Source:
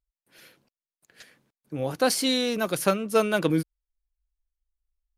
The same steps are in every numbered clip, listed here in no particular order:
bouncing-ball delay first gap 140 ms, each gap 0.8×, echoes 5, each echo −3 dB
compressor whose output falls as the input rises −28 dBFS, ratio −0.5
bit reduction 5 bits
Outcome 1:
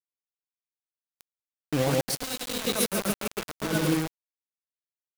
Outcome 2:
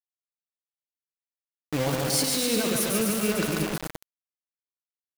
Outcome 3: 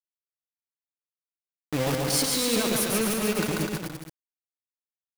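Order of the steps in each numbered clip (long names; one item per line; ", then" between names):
bouncing-ball delay, then compressor whose output falls as the input rises, then bit reduction
compressor whose output falls as the input rises, then bouncing-ball delay, then bit reduction
compressor whose output falls as the input rises, then bit reduction, then bouncing-ball delay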